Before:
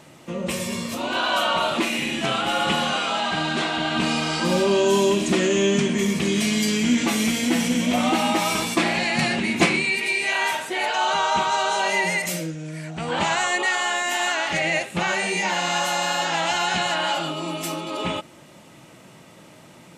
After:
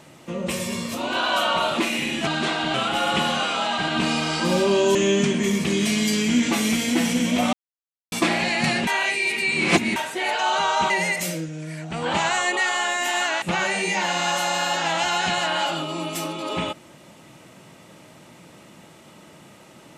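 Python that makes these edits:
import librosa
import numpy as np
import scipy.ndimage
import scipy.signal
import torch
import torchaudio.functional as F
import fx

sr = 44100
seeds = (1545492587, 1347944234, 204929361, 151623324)

y = fx.edit(x, sr, fx.move(start_s=3.41, length_s=0.47, to_s=2.27),
    fx.cut(start_s=4.95, length_s=0.55),
    fx.silence(start_s=8.08, length_s=0.59),
    fx.reverse_span(start_s=9.42, length_s=1.09),
    fx.cut(start_s=11.45, length_s=0.51),
    fx.cut(start_s=14.48, length_s=0.42), tone=tone)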